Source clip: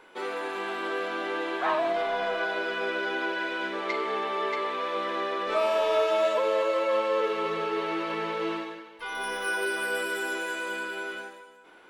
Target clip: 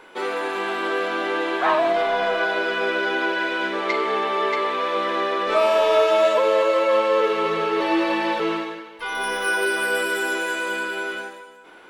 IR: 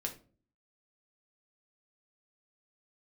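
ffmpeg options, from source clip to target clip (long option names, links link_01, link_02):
-filter_complex "[0:a]asettb=1/sr,asplit=3[link_01][link_02][link_03];[link_01]atrim=end=7.804[link_04];[link_02]atrim=start=7.8:end=8.4,asetpts=PTS-STARTPTS,afade=type=in:duration=0.004:curve=qsin,afade=type=out:start_time=0.596:duration=0.004:curve=qsin,aecho=1:1:3.4:0.95,atrim=end_sample=26460[link_05];[link_03]atrim=start=8.396[link_06];[link_04][link_05]acrossfade=duration=0.004:curve1=hsin:curve2=qsin[link_07];[link_07][link_06]acrossfade=duration=0.004:curve1=qsin:curve2=hsin,volume=7dB"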